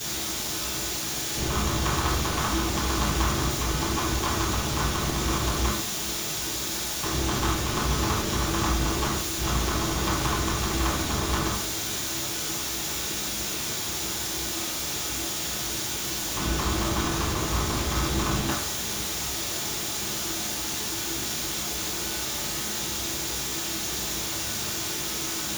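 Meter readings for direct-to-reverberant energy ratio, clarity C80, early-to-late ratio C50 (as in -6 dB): -11.0 dB, 6.5 dB, 2.5 dB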